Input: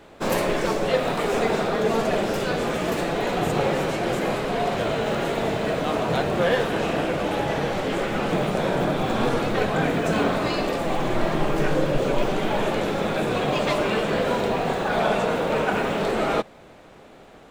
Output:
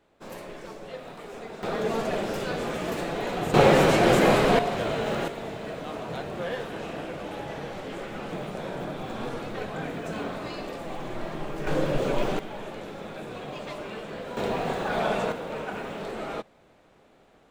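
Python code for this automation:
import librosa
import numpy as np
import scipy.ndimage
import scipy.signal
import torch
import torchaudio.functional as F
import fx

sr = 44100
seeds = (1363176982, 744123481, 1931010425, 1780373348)

y = fx.gain(x, sr, db=fx.steps((0.0, -17.5), (1.63, -5.5), (3.54, 5.5), (4.59, -3.5), (5.28, -11.0), (11.67, -3.5), (12.39, -14.0), (14.37, -4.5), (15.32, -11.0)))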